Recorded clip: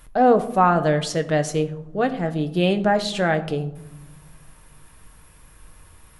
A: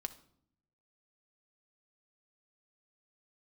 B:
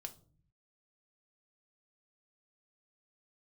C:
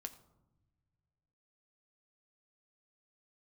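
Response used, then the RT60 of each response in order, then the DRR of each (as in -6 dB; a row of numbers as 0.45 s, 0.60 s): C; 0.65 s, 0.45 s, no single decay rate; 8.5 dB, 5.5 dB, 7.0 dB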